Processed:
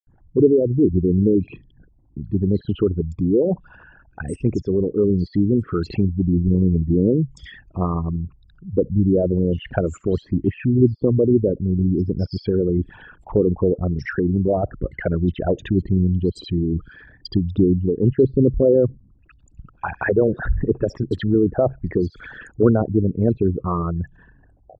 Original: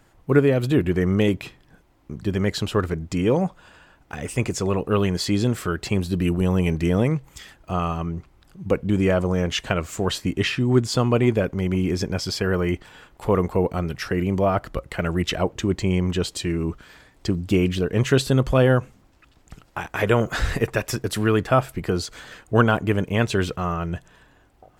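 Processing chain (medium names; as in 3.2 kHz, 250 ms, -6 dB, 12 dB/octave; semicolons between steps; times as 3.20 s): resonances exaggerated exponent 3; low-pass that closes with the level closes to 560 Hz, closed at -18 dBFS; bands offset in time highs, lows 70 ms, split 4.2 kHz; trim +3.5 dB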